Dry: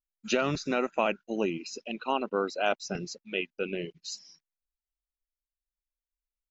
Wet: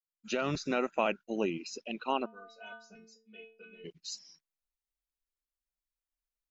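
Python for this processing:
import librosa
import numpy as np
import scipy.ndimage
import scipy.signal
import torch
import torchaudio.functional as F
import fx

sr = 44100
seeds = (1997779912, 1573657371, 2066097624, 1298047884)

y = fx.fade_in_head(x, sr, length_s=0.54)
y = fx.stiff_resonator(y, sr, f0_hz=220.0, decay_s=0.52, stiffness=0.008, at=(2.25, 3.84), fade=0.02)
y = y * librosa.db_to_amplitude(-2.5)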